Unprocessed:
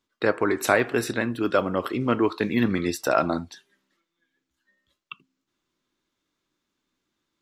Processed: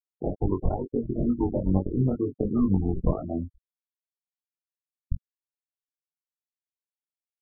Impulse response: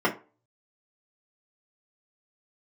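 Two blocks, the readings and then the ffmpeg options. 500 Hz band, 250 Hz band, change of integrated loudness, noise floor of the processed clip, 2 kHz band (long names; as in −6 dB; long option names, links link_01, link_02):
−7.0 dB, −0.5 dB, −3.0 dB, below −85 dBFS, below −40 dB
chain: -filter_complex "[0:a]acompressor=threshold=-24dB:ratio=16,asplit=2[link_01][link_02];[link_02]adelay=21,volume=-6.5dB[link_03];[link_01][link_03]amix=inputs=2:normalize=0,asplit=2[link_04][link_05];[link_05]adelay=304,lowpass=frequency=1200:poles=1,volume=-13dB,asplit=2[link_06][link_07];[link_07]adelay=304,lowpass=frequency=1200:poles=1,volume=0.18[link_08];[link_06][link_08]amix=inputs=2:normalize=0[link_09];[link_04][link_09]amix=inputs=2:normalize=0,acrusher=samples=26:mix=1:aa=0.000001:lfo=1:lforange=26:lforate=0.8,aemphasis=mode=reproduction:type=riaa,aeval=exprs='sgn(val(0))*max(abs(val(0))-0.0224,0)':channel_layout=same,afftfilt=real='re*gte(hypot(re,im),0.0891)':imag='im*gte(hypot(re,im),0.0891)':win_size=1024:overlap=0.75,flanger=delay=20:depth=3.4:speed=2.2,asuperstop=centerf=1700:order=12:qfactor=2.2,volume=1.5dB"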